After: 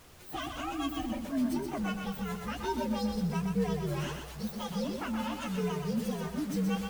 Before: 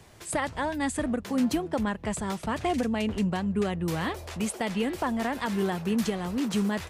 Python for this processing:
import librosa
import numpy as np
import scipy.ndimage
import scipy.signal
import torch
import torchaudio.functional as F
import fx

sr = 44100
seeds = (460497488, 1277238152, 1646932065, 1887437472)

y = fx.partial_stretch(x, sr, pct=125)
y = fx.dmg_noise_colour(y, sr, seeds[0], colour='pink', level_db=-52.0)
y = fx.echo_crushed(y, sr, ms=124, feedback_pct=35, bits=8, wet_db=-4.5)
y = y * 10.0 ** (-4.0 / 20.0)